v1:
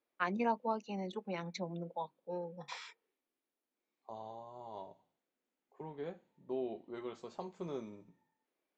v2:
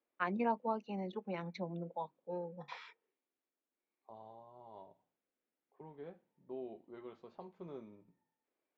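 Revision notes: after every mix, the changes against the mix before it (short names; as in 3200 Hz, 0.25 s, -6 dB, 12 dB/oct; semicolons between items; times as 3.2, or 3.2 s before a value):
second voice -6.0 dB; master: add air absorption 240 m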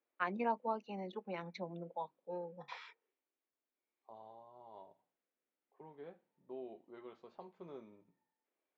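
master: add low shelf 230 Hz -8.5 dB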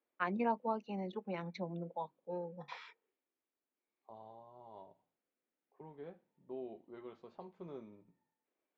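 master: add low shelf 230 Hz +8.5 dB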